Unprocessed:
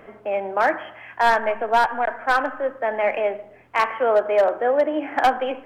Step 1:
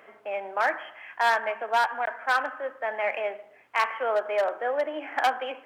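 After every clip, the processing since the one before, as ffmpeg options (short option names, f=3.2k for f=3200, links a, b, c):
-af "highpass=f=1.1k:p=1,volume=-1.5dB"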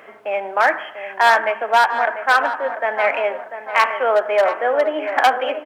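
-filter_complex "[0:a]asplit=2[a][b];[b]adelay=694,lowpass=f=1.8k:p=1,volume=-9.5dB,asplit=2[c][d];[d]adelay=694,lowpass=f=1.8k:p=1,volume=0.48,asplit=2[e][f];[f]adelay=694,lowpass=f=1.8k:p=1,volume=0.48,asplit=2[g][h];[h]adelay=694,lowpass=f=1.8k:p=1,volume=0.48,asplit=2[i][j];[j]adelay=694,lowpass=f=1.8k:p=1,volume=0.48[k];[a][c][e][g][i][k]amix=inputs=6:normalize=0,volume=9dB"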